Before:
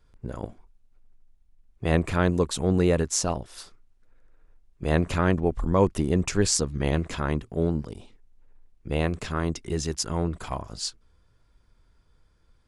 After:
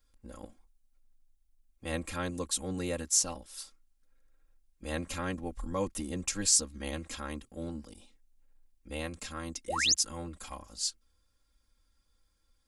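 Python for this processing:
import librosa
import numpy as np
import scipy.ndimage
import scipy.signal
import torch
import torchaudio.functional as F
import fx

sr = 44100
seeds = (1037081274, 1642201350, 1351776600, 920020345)

y = fx.spec_paint(x, sr, seeds[0], shape='rise', start_s=9.68, length_s=0.26, low_hz=440.0, high_hz=7300.0, level_db=-22.0)
y = F.preemphasis(torch.from_numpy(y), 0.8).numpy()
y = y + 0.93 * np.pad(y, (int(3.7 * sr / 1000.0), 0))[:len(y)]
y = y * librosa.db_to_amplitude(-1.0)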